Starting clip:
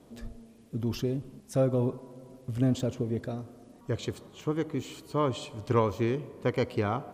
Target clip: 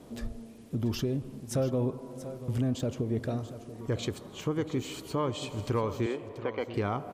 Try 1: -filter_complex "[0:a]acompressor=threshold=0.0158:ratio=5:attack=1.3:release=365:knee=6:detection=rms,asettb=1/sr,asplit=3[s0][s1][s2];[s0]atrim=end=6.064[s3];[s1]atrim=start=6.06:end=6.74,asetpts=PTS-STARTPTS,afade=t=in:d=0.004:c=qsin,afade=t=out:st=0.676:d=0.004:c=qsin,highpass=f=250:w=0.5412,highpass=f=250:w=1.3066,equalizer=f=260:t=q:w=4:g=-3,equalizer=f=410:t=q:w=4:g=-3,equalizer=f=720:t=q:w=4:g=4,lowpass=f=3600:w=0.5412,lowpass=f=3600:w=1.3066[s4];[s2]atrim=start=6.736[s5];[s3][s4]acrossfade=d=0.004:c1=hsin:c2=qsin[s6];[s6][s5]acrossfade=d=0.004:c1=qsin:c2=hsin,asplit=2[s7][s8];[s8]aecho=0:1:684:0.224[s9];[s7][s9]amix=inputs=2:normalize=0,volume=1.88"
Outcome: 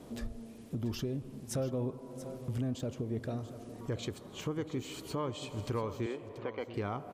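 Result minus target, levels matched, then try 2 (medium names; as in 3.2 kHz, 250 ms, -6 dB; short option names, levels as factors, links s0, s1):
compression: peak gain reduction +5.5 dB
-filter_complex "[0:a]acompressor=threshold=0.0355:ratio=5:attack=1.3:release=365:knee=6:detection=rms,asettb=1/sr,asplit=3[s0][s1][s2];[s0]atrim=end=6.064[s3];[s1]atrim=start=6.06:end=6.74,asetpts=PTS-STARTPTS,afade=t=in:d=0.004:c=qsin,afade=t=out:st=0.676:d=0.004:c=qsin,highpass=f=250:w=0.5412,highpass=f=250:w=1.3066,equalizer=f=260:t=q:w=4:g=-3,equalizer=f=410:t=q:w=4:g=-3,equalizer=f=720:t=q:w=4:g=4,lowpass=f=3600:w=0.5412,lowpass=f=3600:w=1.3066[s4];[s2]atrim=start=6.736[s5];[s3][s4]acrossfade=d=0.004:c1=hsin:c2=qsin[s6];[s6][s5]acrossfade=d=0.004:c1=qsin:c2=hsin,asplit=2[s7][s8];[s8]aecho=0:1:684:0.224[s9];[s7][s9]amix=inputs=2:normalize=0,volume=1.88"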